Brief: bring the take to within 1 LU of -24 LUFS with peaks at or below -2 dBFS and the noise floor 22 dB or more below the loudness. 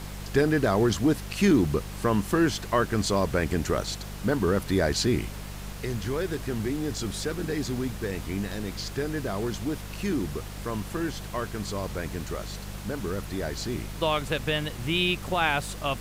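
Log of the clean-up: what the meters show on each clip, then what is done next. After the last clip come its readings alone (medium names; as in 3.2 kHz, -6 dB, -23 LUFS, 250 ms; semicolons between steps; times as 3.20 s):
hum 50 Hz; highest harmonic 200 Hz; hum level -37 dBFS; noise floor -38 dBFS; noise floor target -50 dBFS; loudness -28.0 LUFS; peak level -10.0 dBFS; loudness target -24.0 LUFS
-> de-hum 50 Hz, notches 4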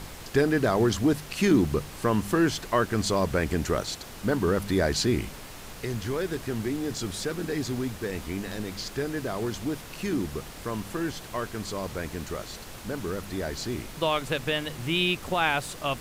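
hum not found; noise floor -43 dBFS; noise floor target -50 dBFS
-> noise print and reduce 7 dB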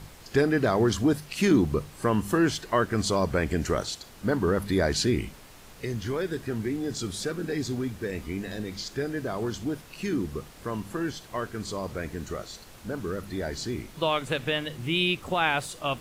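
noise floor -49 dBFS; noise floor target -51 dBFS
-> noise print and reduce 6 dB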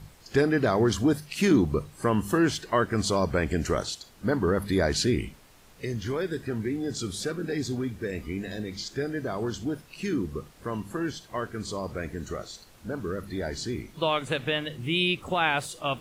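noise floor -54 dBFS; loudness -28.5 LUFS; peak level -10.0 dBFS; loudness target -24.0 LUFS
-> trim +4.5 dB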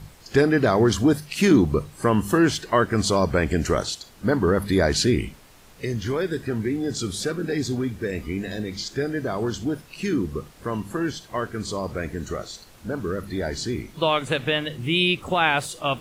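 loudness -24.0 LUFS; peak level -5.5 dBFS; noise floor -49 dBFS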